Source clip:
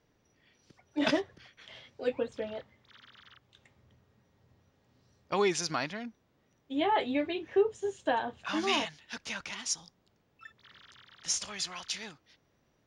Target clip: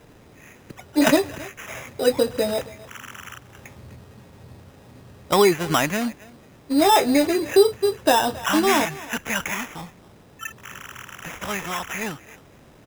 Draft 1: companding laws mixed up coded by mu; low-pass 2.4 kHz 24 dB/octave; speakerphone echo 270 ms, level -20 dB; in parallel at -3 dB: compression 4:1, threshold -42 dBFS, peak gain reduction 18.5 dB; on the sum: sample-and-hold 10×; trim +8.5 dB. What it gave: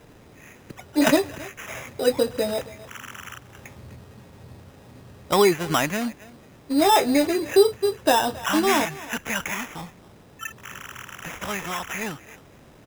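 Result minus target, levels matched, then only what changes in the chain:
compression: peak gain reduction +7.5 dB
change: compression 4:1, threshold -32 dBFS, peak gain reduction 11 dB

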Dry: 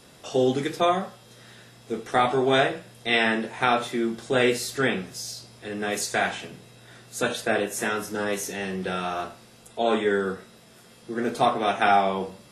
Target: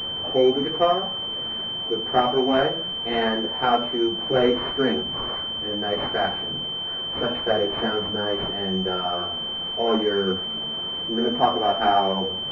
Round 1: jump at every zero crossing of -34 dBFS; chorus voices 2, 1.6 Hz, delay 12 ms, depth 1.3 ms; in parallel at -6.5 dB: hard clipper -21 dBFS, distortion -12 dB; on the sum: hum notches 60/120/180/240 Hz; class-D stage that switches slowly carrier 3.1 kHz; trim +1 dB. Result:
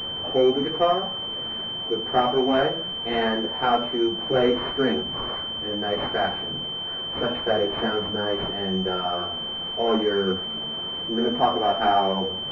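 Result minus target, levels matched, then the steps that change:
hard clipper: distortion +27 dB
change: hard clipper -11.5 dBFS, distortion -39 dB

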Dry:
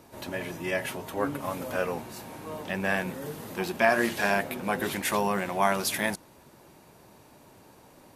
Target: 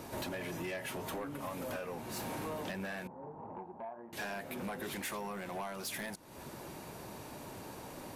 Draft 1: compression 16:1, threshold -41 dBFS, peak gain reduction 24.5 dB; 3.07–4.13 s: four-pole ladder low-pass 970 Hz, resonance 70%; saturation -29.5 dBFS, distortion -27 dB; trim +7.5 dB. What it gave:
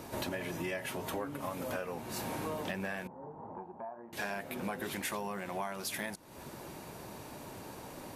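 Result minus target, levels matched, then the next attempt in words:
saturation: distortion -15 dB
compression 16:1, threshold -41 dBFS, peak gain reduction 24.5 dB; 3.07–4.13 s: four-pole ladder low-pass 970 Hz, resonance 70%; saturation -41 dBFS, distortion -12 dB; trim +7.5 dB

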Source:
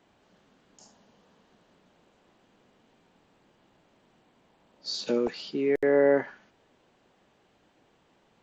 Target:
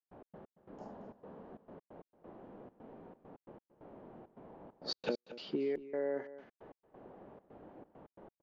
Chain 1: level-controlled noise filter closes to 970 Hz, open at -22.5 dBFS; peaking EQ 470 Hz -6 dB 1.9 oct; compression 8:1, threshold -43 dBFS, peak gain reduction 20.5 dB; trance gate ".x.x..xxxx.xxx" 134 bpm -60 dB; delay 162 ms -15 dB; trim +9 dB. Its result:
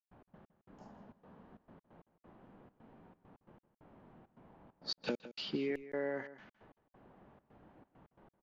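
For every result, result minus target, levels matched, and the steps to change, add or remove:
echo 65 ms early; 500 Hz band -5.0 dB
change: delay 227 ms -15 dB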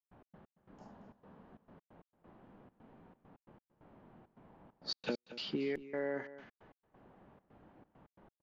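500 Hz band -5.0 dB
change: peaking EQ 470 Hz +5 dB 1.9 oct

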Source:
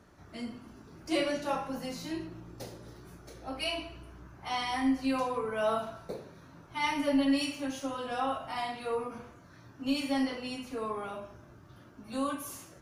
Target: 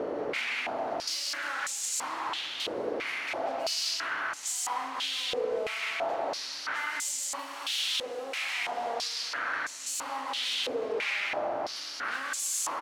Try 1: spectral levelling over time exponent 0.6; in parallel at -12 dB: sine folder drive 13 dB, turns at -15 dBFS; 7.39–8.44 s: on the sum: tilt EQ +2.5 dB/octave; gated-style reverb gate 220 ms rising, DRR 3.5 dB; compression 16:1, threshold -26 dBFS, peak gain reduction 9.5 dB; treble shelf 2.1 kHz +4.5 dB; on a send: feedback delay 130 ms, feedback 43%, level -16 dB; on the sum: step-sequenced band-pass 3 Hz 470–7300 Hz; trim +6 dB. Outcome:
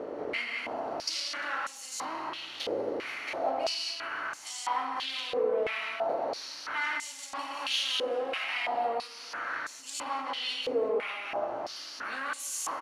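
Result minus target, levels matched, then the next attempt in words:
sine folder: distortion -19 dB
spectral levelling over time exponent 0.6; in parallel at -12 dB: sine folder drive 24 dB, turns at -15 dBFS; 7.39–8.44 s: on the sum: tilt EQ +2.5 dB/octave; gated-style reverb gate 220 ms rising, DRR 3.5 dB; compression 16:1, threshold -26 dBFS, peak gain reduction 9.5 dB; treble shelf 2.1 kHz +4.5 dB; on a send: feedback delay 130 ms, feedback 43%, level -16 dB; on the sum: step-sequenced band-pass 3 Hz 470–7300 Hz; trim +6 dB

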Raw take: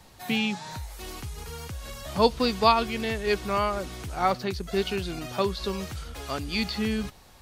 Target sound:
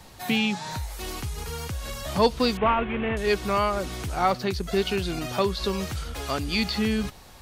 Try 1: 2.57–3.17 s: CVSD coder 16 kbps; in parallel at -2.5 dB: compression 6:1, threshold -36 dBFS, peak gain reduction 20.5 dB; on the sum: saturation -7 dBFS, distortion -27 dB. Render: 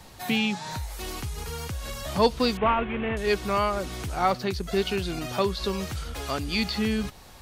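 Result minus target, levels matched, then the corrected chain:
compression: peak gain reduction +5.5 dB
2.57–3.17 s: CVSD coder 16 kbps; in parallel at -2.5 dB: compression 6:1, threshold -29.5 dBFS, peak gain reduction 15 dB; on the sum: saturation -7 dBFS, distortion -26 dB

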